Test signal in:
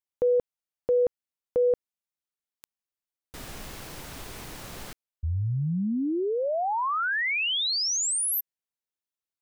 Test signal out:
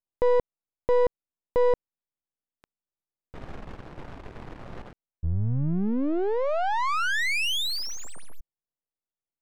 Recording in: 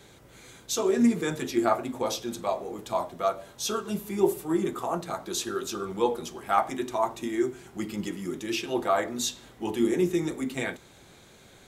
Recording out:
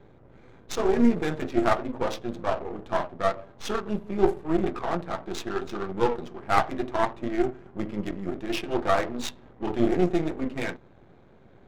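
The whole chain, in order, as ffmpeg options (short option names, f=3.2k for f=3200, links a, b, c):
-af "aeval=exprs='if(lt(val(0),0),0.251*val(0),val(0))':c=same,adynamicsmooth=sensitivity=6:basefreq=1.1k,volume=5dB"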